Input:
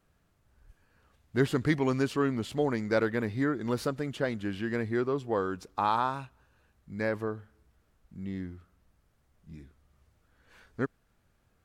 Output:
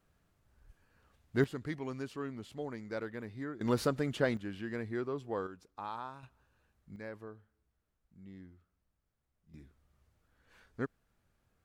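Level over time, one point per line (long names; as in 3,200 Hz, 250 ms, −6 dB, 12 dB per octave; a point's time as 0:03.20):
−3 dB
from 0:01.44 −12.5 dB
from 0:03.61 0 dB
from 0:04.37 −7.5 dB
from 0:05.47 −14.5 dB
from 0:06.23 −6.5 dB
from 0:06.96 −14.5 dB
from 0:09.54 −5.5 dB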